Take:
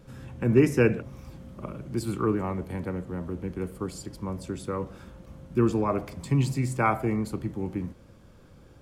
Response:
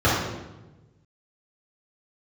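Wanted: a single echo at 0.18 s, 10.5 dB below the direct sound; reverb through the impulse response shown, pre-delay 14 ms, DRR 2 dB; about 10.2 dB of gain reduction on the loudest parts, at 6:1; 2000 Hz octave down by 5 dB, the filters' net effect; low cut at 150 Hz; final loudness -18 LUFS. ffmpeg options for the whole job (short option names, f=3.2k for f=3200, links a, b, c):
-filter_complex "[0:a]highpass=150,equalizer=f=2k:t=o:g=-7,acompressor=threshold=-26dB:ratio=6,aecho=1:1:180:0.299,asplit=2[a][b];[1:a]atrim=start_sample=2205,adelay=14[c];[b][c]afir=irnorm=-1:irlink=0,volume=-23dB[d];[a][d]amix=inputs=2:normalize=0,volume=11dB"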